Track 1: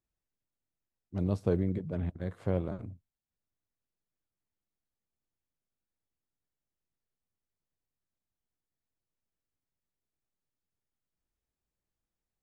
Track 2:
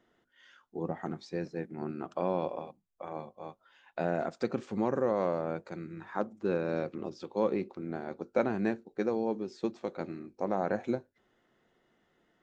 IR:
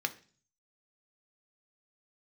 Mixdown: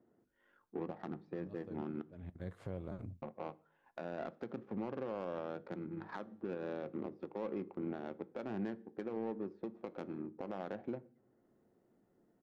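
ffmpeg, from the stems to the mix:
-filter_complex "[0:a]adelay=200,volume=-3dB,asplit=2[link_01][link_02];[link_02]volume=-23dB[link_03];[1:a]acompressor=threshold=-31dB:ratio=6,highpass=frequency=85:width=0.5412,highpass=frequency=85:width=1.3066,adynamicsmooth=sensitivity=4.5:basefreq=580,volume=1dB,asplit=3[link_04][link_05][link_06];[link_04]atrim=end=2.02,asetpts=PTS-STARTPTS,afade=type=out:start_time=2.016:duration=0.004:curve=hsin[link_07];[link_05]atrim=start=2.02:end=3.22,asetpts=PTS-STARTPTS,volume=0[link_08];[link_06]atrim=start=3.22,asetpts=PTS-STARTPTS,afade=type=in:duration=0.004:curve=hsin[link_09];[link_07][link_08][link_09]concat=n=3:v=0:a=1,asplit=3[link_10][link_11][link_12];[link_11]volume=-9dB[link_13];[link_12]apad=whole_len=556729[link_14];[link_01][link_14]sidechaincompress=threshold=-58dB:ratio=10:attack=41:release=316[link_15];[2:a]atrim=start_sample=2205[link_16];[link_03][link_13]amix=inputs=2:normalize=0[link_17];[link_17][link_16]afir=irnorm=-1:irlink=0[link_18];[link_15][link_10][link_18]amix=inputs=3:normalize=0,alimiter=level_in=7dB:limit=-24dB:level=0:latency=1:release=323,volume=-7dB"

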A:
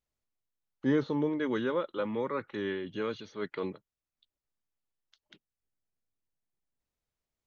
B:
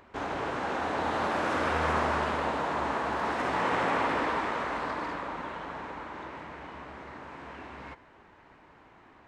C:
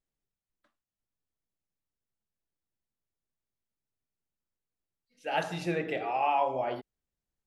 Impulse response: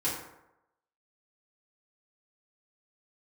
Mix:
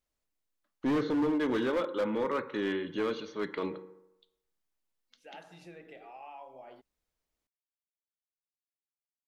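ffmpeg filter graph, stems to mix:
-filter_complex "[0:a]volume=1.5dB,asplit=2[link_01][link_02];[link_02]volume=-15.5dB[link_03];[2:a]acompressor=threshold=-43dB:ratio=2,volume=-10dB[link_04];[3:a]atrim=start_sample=2205[link_05];[link_03][link_05]afir=irnorm=-1:irlink=0[link_06];[link_01][link_04][link_06]amix=inputs=3:normalize=0,equalizer=frequency=110:width=2.7:gain=-9.5,asoftclip=type=hard:threshold=-25dB"

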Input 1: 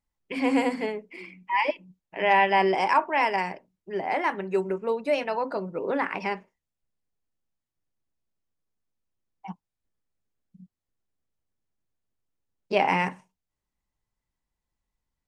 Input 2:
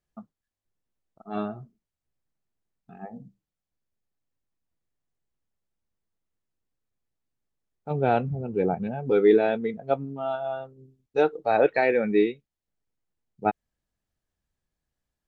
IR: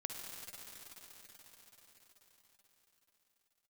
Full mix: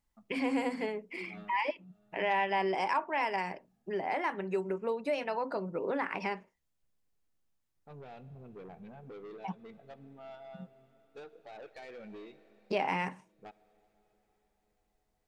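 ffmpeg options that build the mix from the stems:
-filter_complex "[0:a]acontrast=28,volume=-2.5dB,asplit=2[link_01][link_02];[1:a]highshelf=frequency=2900:gain=9,acompressor=threshold=-22dB:ratio=12,asoftclip=type=tanh:threshold=-27dB,volume=-18dB,asplit=2[link_03][link_04];[link_04]volume=-9.5dB[link_05];[link_02]apad=whole_len=673517[link_06];[link_03][link_06]sidechaincompress=threshold=-38dB:ratio=8:attack=16:release=231[link_07];[2:a]atrim=start_sample=2205[link_08];[link_05][link_08]afir=irnorm=-1:irlink=0[link_09];[link_01][link_07][link_09]amix=inputs=3:normalize=0,acompressor=threshold=-37dB:ratio=2"

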